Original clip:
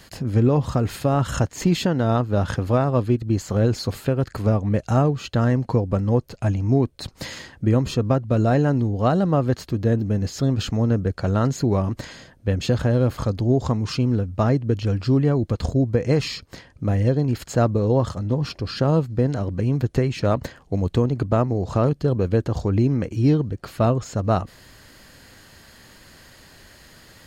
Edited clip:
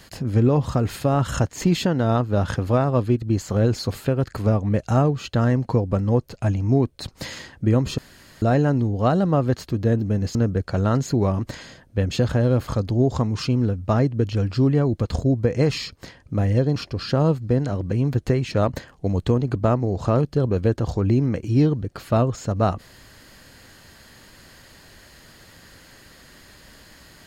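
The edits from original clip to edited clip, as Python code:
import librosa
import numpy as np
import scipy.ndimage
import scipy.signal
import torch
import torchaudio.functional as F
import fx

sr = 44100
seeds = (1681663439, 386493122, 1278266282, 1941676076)

y = fx.edit(x, sr, fx.room_tone_fill(start_s=7.98, length_s=0.44),
    fx.cut(start_s=10.35, length_s=0.5),
    fx.cut(start_s=17.26, length_s=1.18), tone=tone)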